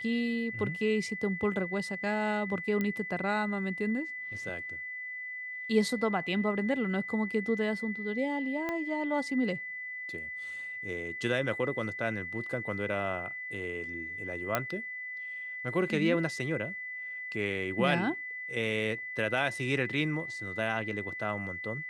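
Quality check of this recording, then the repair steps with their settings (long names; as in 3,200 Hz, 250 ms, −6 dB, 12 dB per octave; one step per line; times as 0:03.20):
whistle 2,000 Hz −37 dBFS
0:02.81: click −19 dBFS
0:08.69: click −20 dBFS
0:14.55: click −12 dBFS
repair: click removal
notch filter 2,000 Hz, Q 30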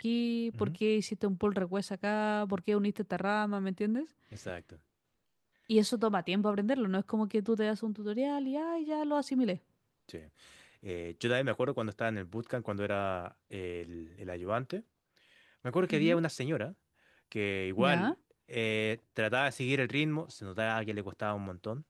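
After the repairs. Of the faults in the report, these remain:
0:08.69: click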